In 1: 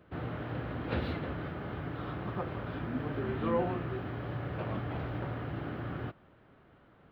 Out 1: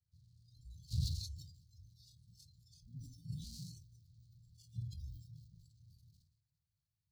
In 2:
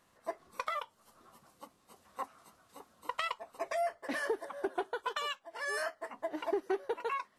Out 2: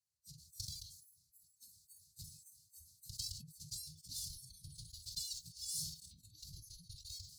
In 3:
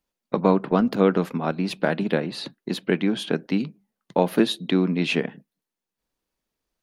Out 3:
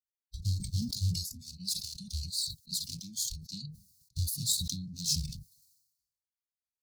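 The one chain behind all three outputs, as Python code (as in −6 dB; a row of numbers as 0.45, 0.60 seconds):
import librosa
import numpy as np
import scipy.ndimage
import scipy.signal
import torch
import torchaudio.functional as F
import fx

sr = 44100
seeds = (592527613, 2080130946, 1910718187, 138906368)

y = fx.lower_of_two(x, sr, delay_ms=3.1)
y = scipy.signal.sosfilt(scipy.signal.butter(2, 91.0, 'highpass', fs=sr, output='sos'), y)
y = fx.noise_reduce_blind(y, sr, reduce_db=21)
y = scipy.signal.sosfilt(scipy.signal.cheby1(5, 1.0, [160.0, 4300.0], 'bandstop', fs=sr, output='sos'), y)
y = fx.sustainer(y, sr, db_per_s=66.0)
y = y * librosa.db_to_amplitude(6.5)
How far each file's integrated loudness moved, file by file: −9.0, −8.5, −10.5 LU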